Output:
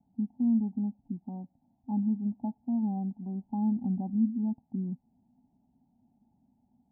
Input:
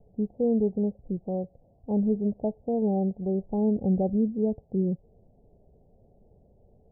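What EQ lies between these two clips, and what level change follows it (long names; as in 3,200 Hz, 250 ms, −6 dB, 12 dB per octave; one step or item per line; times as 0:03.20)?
pair of resonant band-passes 470 Hz, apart 1.8 octaves
parametric band 530 Hz −11.5 dB 1.3 octaves
+8.0 dB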